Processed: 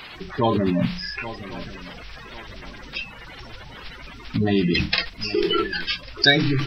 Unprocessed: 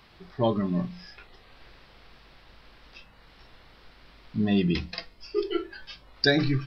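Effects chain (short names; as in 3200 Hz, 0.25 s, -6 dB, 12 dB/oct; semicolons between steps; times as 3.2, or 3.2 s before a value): bin magnitudes rounded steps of 30 dB; bell 2600 Hz +8 dB 1.9 oct; swung echo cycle 1.1 s, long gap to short 3:1, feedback 33%, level -22.5 dB; in parallel at 0 dB: negative-ratio compressor -31 dBFS, ratio -0.5; on the sum: gain +2.5 dB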